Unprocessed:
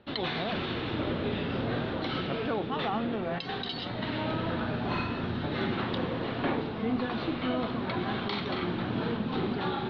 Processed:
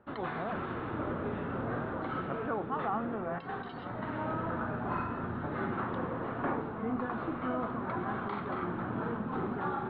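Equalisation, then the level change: synth low-pass 1300 Hz, resonance Q 2.1; -5.0 dB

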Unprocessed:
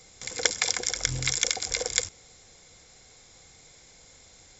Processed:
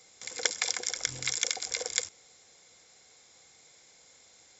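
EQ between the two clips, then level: HPF 360 Hz 6 dB/oct; -4.0 dB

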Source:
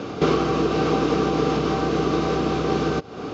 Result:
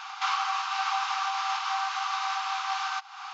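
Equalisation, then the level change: brick-wall FIR high-pass 750 Hz; 0.0 dB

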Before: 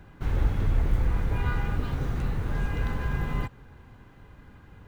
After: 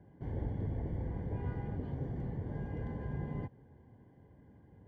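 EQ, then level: running mean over 34 samples; HPF 94 Hz 12 dB/oct; low shelf 410 Hz -3 dB; -2.5 dB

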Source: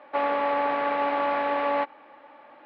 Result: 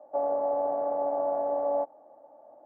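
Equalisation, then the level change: ladder low-pass 720 Hz, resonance 75%; bell 110 Hz +8 dB 0.4 oct; +3.0 dB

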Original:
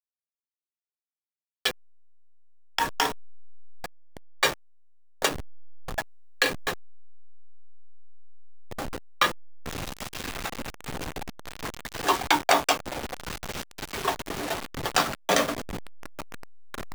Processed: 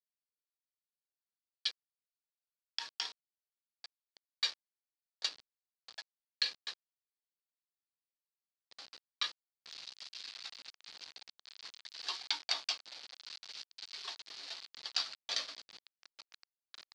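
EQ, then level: band-pass 4500 Hz, Q 4.5; air absorption 72 m; +2.0 dB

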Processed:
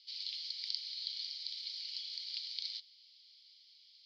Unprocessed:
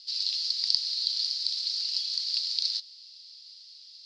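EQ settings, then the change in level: vowel filter i; +7.0 dB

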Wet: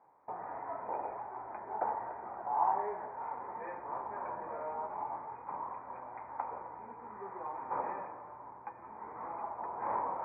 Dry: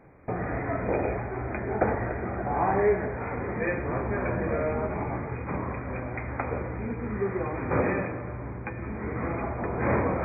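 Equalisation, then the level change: band-pass 920 Hz, Q 7.2; air absorption 370 m; +4.5 dB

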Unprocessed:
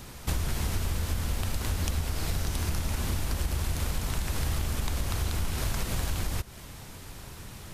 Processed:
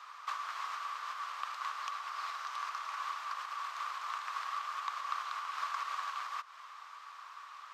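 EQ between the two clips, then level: ladder high-pass 1100 Hz, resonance 85%; air absorption 190 m; high shelf 7000 Hz +10 dB; +7.0 dB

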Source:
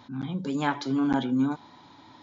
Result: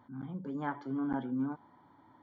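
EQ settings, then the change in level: polynomial smoothing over 41 samples; -9.0 dB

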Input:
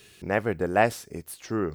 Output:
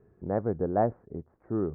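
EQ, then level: Gaussian blur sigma 8 samples; air absorption 390 m; 0.0 dB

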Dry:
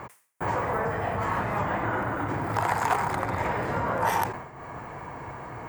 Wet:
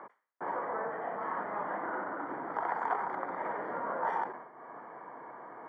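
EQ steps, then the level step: polynomial smoothing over 41 samples; Bessel high-pass 320 Hz, order 6; air absorption 89 m; -6.0 dB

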